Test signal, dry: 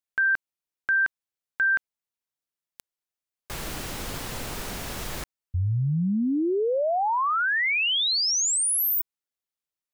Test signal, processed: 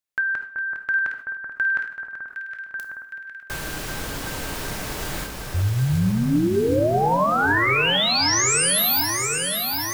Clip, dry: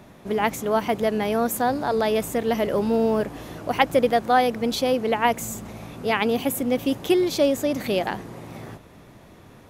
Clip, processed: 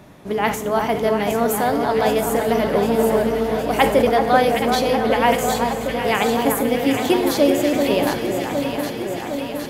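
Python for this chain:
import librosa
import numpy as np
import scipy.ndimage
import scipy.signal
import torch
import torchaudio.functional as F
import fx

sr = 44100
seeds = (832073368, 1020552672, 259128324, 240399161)

p1 = fx.reverse_delay_fb(x, sr, ms=469, feedback_pct=44, wet_db=-11.5)
p2 = p1 + fx.echo_alternate(p1, sr, ms=381, hz=1700.0, feedback_pct=84, wet_db=-5, dry=0)
p3 = fx.rev_double_slope(p2, sr, seeds[0], early_s=0.61, late_s=2.7, knee_db=-18, drr_db=9.0)
p4 = fx.sustainer(p3, sr, db_per_s=110.0)
y = p4 * librosa.db_to_amplitude(2.0)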